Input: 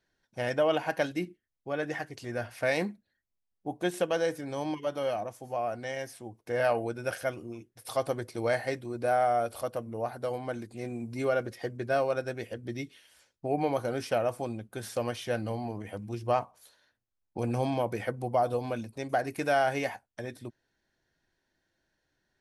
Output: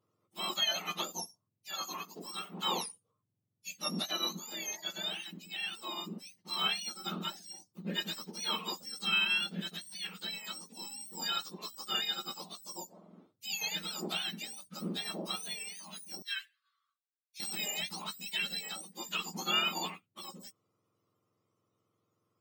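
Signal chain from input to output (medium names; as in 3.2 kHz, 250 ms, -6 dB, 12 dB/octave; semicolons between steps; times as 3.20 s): spectrum inverted on a logarithmic axis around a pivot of 1.4 kHz; 16.22–17.40 s: rippled Chebyshev high-pass 1.1 kHz, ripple 9 dB; trim -2 dB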